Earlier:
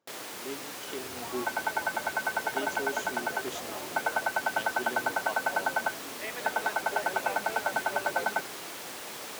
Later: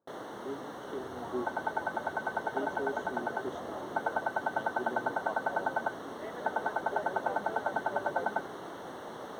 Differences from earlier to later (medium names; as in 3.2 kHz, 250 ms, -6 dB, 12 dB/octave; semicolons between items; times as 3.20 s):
first sound +3.5 dB; master: add boxcar filter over 18 samples